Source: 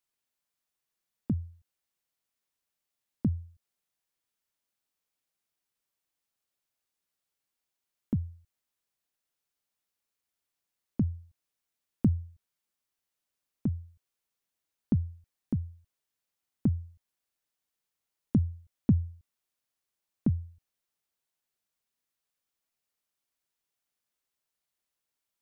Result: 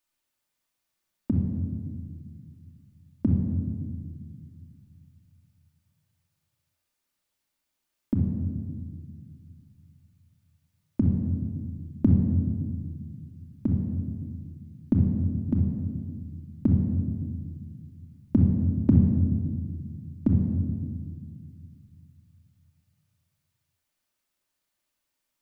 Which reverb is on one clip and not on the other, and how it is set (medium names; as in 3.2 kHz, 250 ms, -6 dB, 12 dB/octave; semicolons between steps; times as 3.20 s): simulated room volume 2700 m³, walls mixed, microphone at 2.6 m; trim +2.5 dB